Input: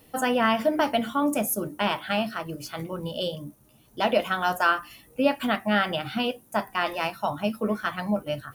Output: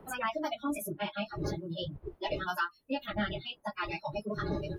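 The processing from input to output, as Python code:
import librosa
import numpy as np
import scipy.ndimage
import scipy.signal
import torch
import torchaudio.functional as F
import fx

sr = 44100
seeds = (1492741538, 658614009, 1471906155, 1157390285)

y = fx.dmg_wind(x, sr, seeds[0], corner_hz=530.0, level_db=-33.0)
y = fx.noise_reduce_blind(y, sr, reduce_db=26)
y = fx.dynamic_eq(y, sr, hz=560.0, q=0.76, threshold_db=-37.0, ratio=4.0, max_db=-3)
y = fx.stretch_vocoder_free(y, sr, factor=0.56)
y = fx.band_squash(y, sr, depth_pct=70)
y = y * 10.0 ** (-3.5 / 20.0)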